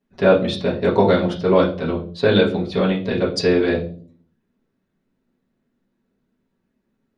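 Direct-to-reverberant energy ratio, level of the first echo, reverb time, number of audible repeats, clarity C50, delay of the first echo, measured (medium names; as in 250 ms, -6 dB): -6.5 dB, no echo, 0.45 s, no echo, 10.0 dB, no echo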